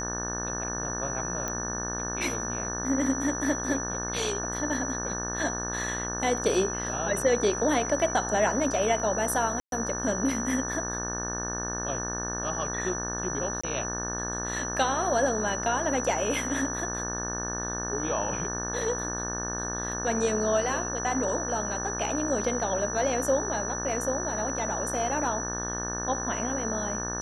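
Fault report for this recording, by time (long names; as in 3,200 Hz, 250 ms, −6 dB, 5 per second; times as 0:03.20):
mains buzz 60 Hz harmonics 30 −35 dBFS
whistle 5,900 Hz −33 dBFS
0:01.48: click −17 dBFS
0:09.60–0:09.72: drop-out 122 ms
0:13.61–0:13.63: drop-out 25 ms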